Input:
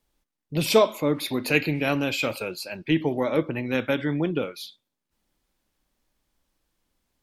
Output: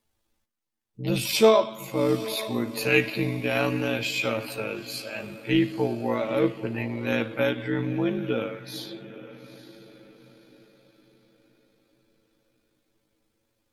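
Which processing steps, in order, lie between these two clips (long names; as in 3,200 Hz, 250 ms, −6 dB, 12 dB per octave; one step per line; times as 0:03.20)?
feedback delay with all-pass diffusion 456 ms, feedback 40%, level −15 dB
time stretch by overlap-add 1.9×, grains 38 ms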